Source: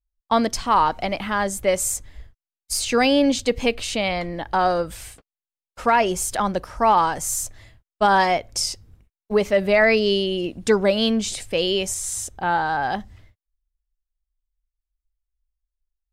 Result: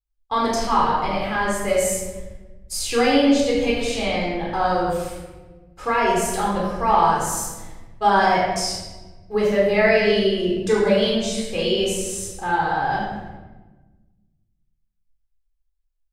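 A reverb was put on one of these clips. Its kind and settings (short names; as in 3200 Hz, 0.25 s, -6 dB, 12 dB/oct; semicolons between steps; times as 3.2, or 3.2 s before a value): shoebox room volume 820 m³, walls mixed, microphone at 3.9 m; gain -8 dB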